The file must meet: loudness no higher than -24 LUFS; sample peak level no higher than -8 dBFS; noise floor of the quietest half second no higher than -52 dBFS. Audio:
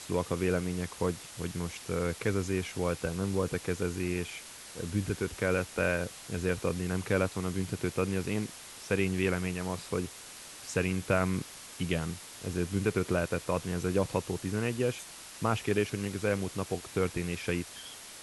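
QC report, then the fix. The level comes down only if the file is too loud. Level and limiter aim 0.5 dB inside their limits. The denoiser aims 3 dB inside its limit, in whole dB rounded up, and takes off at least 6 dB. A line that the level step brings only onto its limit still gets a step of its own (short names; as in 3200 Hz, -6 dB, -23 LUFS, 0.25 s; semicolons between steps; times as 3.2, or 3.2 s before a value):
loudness -32.5 LUFS: OK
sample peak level -13.0 dBFS: OK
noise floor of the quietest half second -47 dBFS: fail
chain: denoiser 8 dB, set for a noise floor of -47 dBFS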